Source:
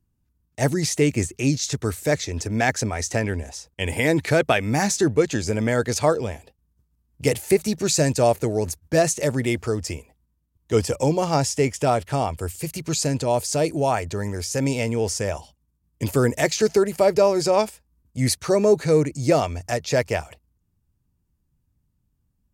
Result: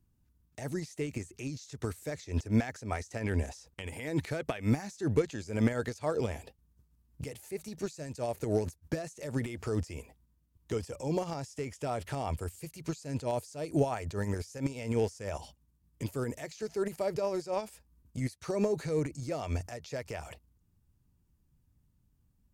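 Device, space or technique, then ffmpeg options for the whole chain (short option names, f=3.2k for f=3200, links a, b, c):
de-esser from a sidechain: -filter_complex "[0:a]asplit=2[a][b];[b]highpass=4.7k,apad=whole_len=993708[c];[a][c]sidechaincompress=threshold=-47dB:ratio=16:attack=1.1:release=83"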